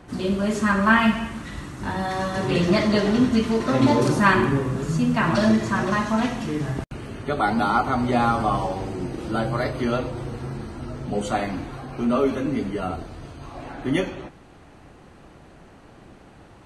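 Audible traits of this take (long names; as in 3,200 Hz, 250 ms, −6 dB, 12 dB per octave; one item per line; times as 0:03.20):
background noise floor −49 dBFS
spectral slope −5.0 dB per octave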